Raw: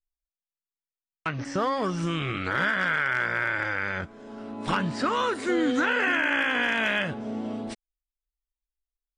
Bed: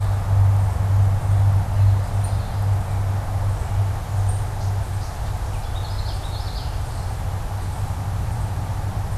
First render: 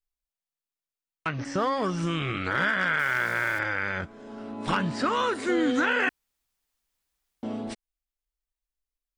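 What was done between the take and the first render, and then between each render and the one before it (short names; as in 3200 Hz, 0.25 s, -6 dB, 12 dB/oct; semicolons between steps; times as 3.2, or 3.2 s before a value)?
2.99–3.59 sample gate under -38.5 dBFS; 6.09–7.43 room tone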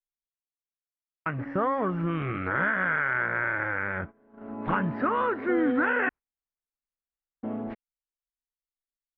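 LPF 2000 Hz 24 dB/oct; gate -38 dBFS, range -17 dB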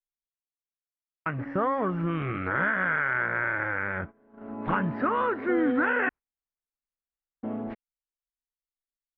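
nothing audible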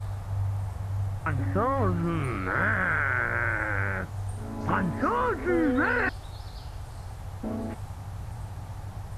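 add bed -13 dB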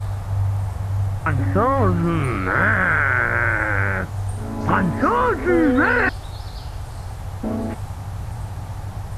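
gain +8 dB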